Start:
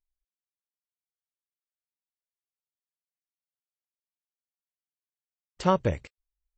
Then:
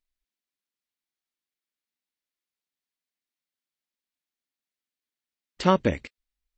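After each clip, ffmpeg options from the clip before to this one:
-af "equalizer=f=125:t=o:w=1:g=-5,equalizer=f=250:t=o:w=1:g=10,equalizer=f=2k:t=o:w=1:g=6,equalizer=f=4k:t=o:w=1:g=6"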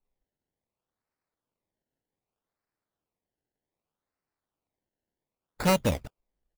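-af "aecho=1:1:1.4:0.48,acrusher=samples=25:mix=1:aa=0.000001:lfo=1:lforange=25:lforate=0.65,asoftclip=type=tanh:threshold=-16.5dB"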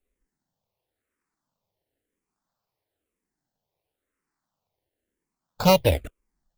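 -filter_complex "[0:a]asplit=2[a][b];[b]afreqshift=-1[c];[a][c]amix=inputs=2:normalize=1,volume=8dB"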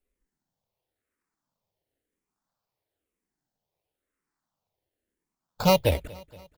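-af "aecho=1:1:235|470|705|940:0.0794|0.0453|0.0258|0.0147,volume=-2.5dB"

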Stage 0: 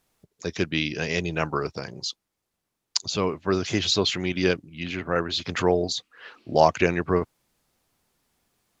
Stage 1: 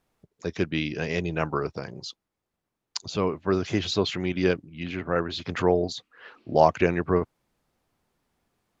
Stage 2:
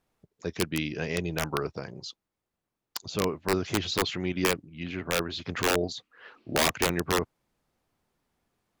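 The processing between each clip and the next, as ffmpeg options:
-af "highshelf=f=3k:g=-10.5"
-af "aeval=exprs='(mod(4.73*val(0)+1,2)-1)/4.73':c=same,volume=-2.5dB"

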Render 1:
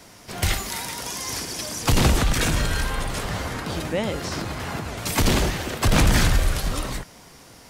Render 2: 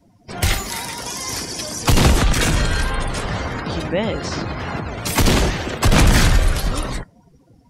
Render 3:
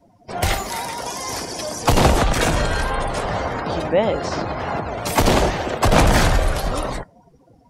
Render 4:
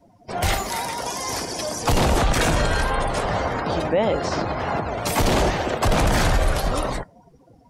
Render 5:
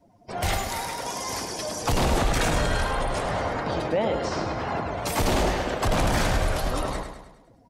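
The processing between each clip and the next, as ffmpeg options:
-af "afftdn=nr=27:nf=-40,volume=4.5dB"
-af "equalizer=f=690:t=o:w=1.6:g=10,volume=-3.5dB"
-af "alimiter=limit=-10.5dB:level=0:latency=1:release=17"
-af "aecho=1:1:104|208|312|416|520|624:0.422|0.202|0.0972|0.0466|0.0224|0.0107,volume=-4.5dB"

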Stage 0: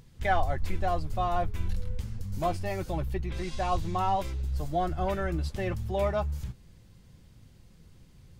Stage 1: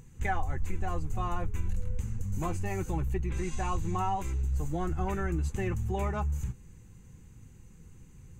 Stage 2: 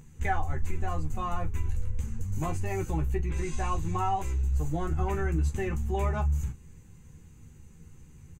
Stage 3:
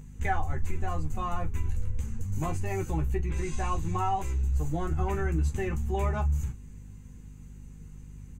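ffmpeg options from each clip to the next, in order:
-af "superequalizer=8b=0.282:13b=0.398:14b=0.355:15b=2.24,acompressor=threshold=-29dB:ratio=2.5,lowshelf=f=430:g=3"
-af "aecho=1:1:13|41:0.531|0.178"
-af "aeval=exprs='val(0)+0.00562*(sin(2*PI*50*n/s)+sin(2*PI*2*50*n/s)/2+sin(2*PI*3*50*n/s)/3+sin(2*PI*4*50*n/s)/4+sin(2*PI*5*50*n/s)/5)':c=same"

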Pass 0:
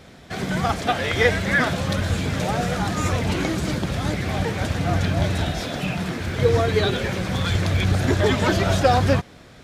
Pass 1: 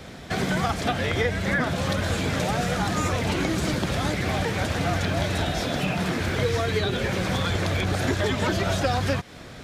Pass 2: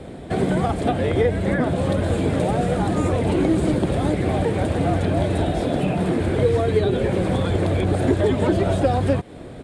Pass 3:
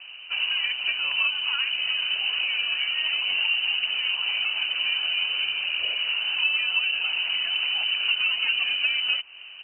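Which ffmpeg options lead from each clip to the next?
-filter_complex "[0:a]acrossover=split=280|1300[a][b][c];[a]acompressor=threshold=-32dB:ratio=4[d];[b]acompressor=threshold=-33dB:ratio=4[e];[c]acompressor=threshold=-36dB:ratio=4[f];[d][e][f]amix=inputs=3:normalize=0,volume=5dB"
-af "firequalizer=gain_entry='entry(210,0);entry(320,5);entry(1300,-9);entry(3700,-10);entry(5800,-19);entry(8800,-2);entry(14000,-25)':delay=0.05:min_phase=1,volume=4.5dB"
-af "lowpass=f=2.6k:t=q:w=0.5098,lowpass=f=2.6k:t=q:w=0.6013,lowpass=f=2.6k:t=q:w=0.9,lowpass=f=2.6k:t=q:w=2.563,afreqshift=-3100,volume=-6dB"

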